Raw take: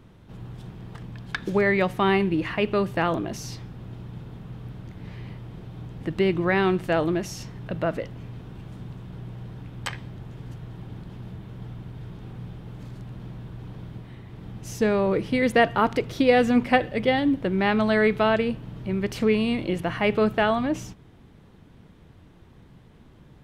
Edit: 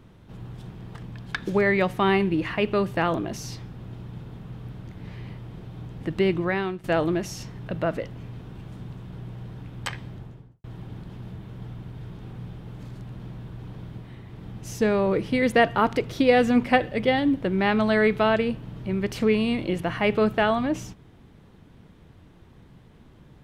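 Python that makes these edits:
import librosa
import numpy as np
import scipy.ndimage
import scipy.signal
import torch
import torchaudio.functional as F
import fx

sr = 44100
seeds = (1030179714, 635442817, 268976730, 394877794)

y = fx.studio_fade_out(x, sr, start_s=10.12, length_s=0.52)
y = fx.edit(y, sr, fx.fade_out_to(start_s=6.32, length_s=0.52, floor_db=-15.5), tone=tone)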